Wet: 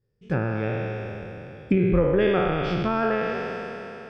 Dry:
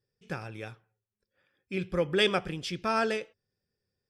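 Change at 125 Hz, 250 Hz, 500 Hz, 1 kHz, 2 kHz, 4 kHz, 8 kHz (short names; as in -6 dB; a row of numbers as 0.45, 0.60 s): +13.0 dB, +11.0 dB, +8.0 dB, +5.5 dB, +3.5 dB, -6.0 dB, under -10 dB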